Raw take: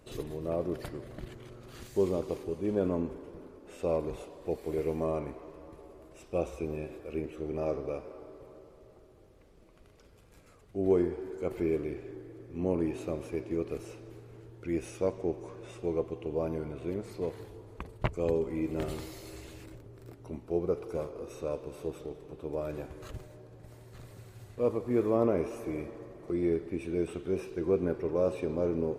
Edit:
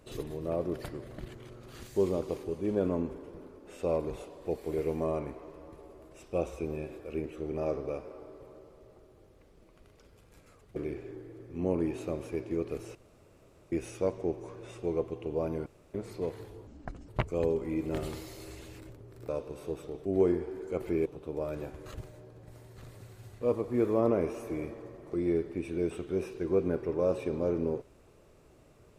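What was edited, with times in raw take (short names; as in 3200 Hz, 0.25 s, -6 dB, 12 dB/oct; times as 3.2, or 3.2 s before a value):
10.76–11.76 move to 22.22
13.95–14.72 room tone
16.66–16.94 room tone
17.67–17.94 speed 65%
20.14–21.45 cut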